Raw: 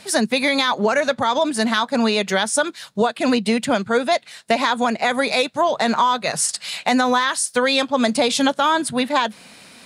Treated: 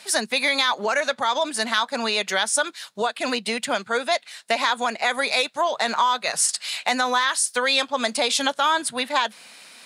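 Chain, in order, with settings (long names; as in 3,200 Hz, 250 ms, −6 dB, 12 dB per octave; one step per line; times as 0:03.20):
high-pass filter 950 Hz 6 dB per octave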